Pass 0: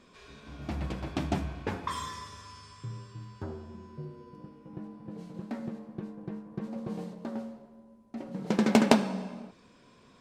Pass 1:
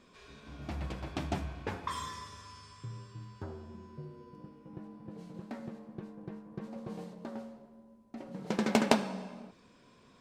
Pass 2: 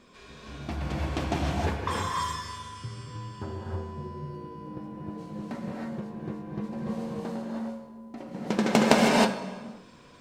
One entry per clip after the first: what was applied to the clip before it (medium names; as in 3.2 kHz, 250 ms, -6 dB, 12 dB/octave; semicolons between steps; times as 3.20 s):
dynamic bell 230 Hz, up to -4 dB, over -42 dBFS, Q 0.85; trim -2.5 dB
gated-style reverb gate 340 ms rising, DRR -2.5 dB; trim +4.5 dB